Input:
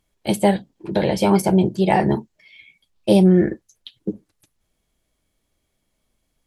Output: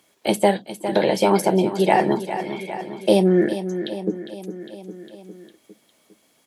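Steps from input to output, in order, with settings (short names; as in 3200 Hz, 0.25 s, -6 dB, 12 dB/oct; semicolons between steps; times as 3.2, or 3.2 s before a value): HPF 270 Hz 12 dB/oct; feedback echo 0.405 s, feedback 49%, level -14 dB; three-band squash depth 40%; gain +2 dB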